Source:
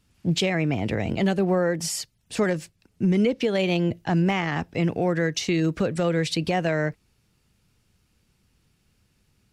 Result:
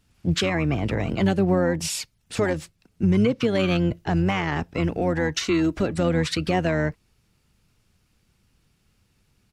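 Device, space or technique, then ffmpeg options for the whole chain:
octave pedal: -filter_complex "[0:a]asettb=1/sr,asplit=3[a][b][c];[a]atrim=end=5.364[d];[b]atrim=start=5.36:end=5.93,asetpts=PTS-STARTPTS,afade=t=in:d=0.004:c=qsin,afade=t=out:st=0.566:d=0.004:c=qsin,aecho=1:1:3:0.43,atrim=end_sample=25137[e];[c]atrim=start=5.926[f];[d][e]acrossfade=d=0.004:c1=hsin:c2=qsin[g];[g][f]acrossfade=d=0.004:c1=qsin:c2=hsin,asplit=2[h][i];[i]asetrate=22050,aresample=44100,atempo=2,volume=-7dB[j];[h][j]amix=inputs=2:normalize=0"

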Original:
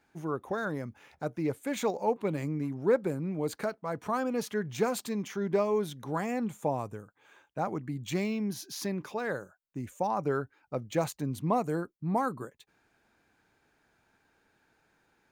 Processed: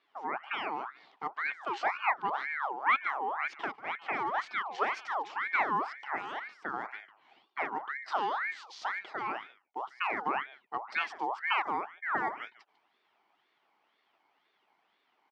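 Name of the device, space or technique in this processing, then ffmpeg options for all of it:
voice changer toy: -filter_complex "[0:a]asettb=1/sr,asplit=3[a][b][c];[a]atrim=end=6.164[d];[b]atrim=start=6.16:end=6.74,asetpts=PTS-STARTPTS,afade=t=in:d=0.004:c=qsin,afade=t=out:st=0.576:d=0.004:c=qsin,highpass=f=550:p=1[e];[c]atrim=start=6.736[f];[d][e]acrossfade=d=0.004:c1=hsin:c2=qsin[g];[g][f]acrossfade=d=0.004:c1=qsin:c2=hsin,aecho=1:1:147:0.126,aeval=exprs='val(0)*sin(2*PI*1300*n/s+1300*0.55/2*sin(2*PI*2*n/s))':c=same,highpass=400,equalizer=f=520:t=q:w=4:g=-9,equalizer=f=800:t=q:w=4:g=5,equalizer=f=1.6k:t=q:w=4:g=-5,equalizer=f=2.6k:t=q:w=4:g=-5,equalizer=f=3.8k:t=q:w=4:g=-4,lowpass=f=4.3k:w=0.5412,lowpass=f=4.3k:w=1.3066,volume=2.5dB"

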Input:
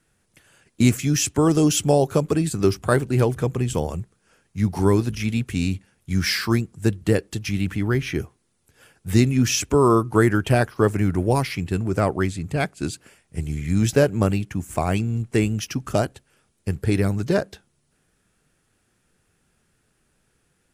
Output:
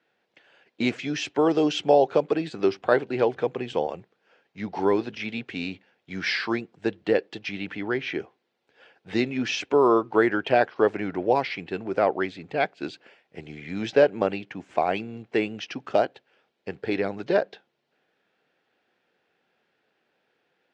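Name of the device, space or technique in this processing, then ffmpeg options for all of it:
phone earpiece: -af "highpass=370,equalizer=f=510:t=q:w=4:g=3,equalizer=f=760:t=q:w=4:g=4,equalizer=f=1.2k:t=q:w=4:g=-5,lowpass=f=4k:w=0.5412,lowpass=f=4k:w=1.3066"

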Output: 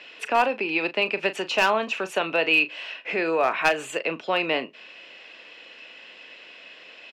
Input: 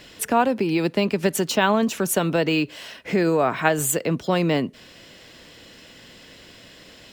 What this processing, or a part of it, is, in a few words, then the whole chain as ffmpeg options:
megaphone: -filter_complex "[0:a]highpass=510,lowpass=3.3k,equalizer=f=2.6k:t=o:w=0.26:g=12,asoftclip=type=hard:threshold=-12dB,asplit=2[a][b];[b]adelay=37,volume=-12.5dB[c];[a][c]amix=inputs=2:normalize=0"

